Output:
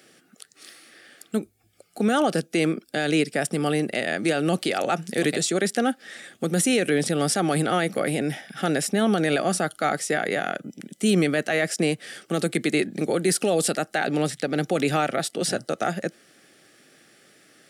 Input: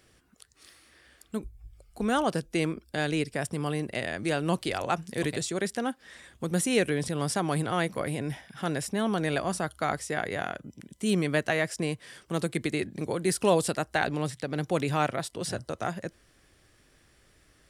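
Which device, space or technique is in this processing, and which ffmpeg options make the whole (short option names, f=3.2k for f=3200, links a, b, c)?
PA system with an anti-feedback notch: -af "highpass=f=170:w=0.5412,highpass=f=170:w=1.3066,asuperstop=centerf=1000:order=4:qfactor=3.9,alimiter=limit=-21dB:level=0:latency=1:release=28,volume=8.5dB"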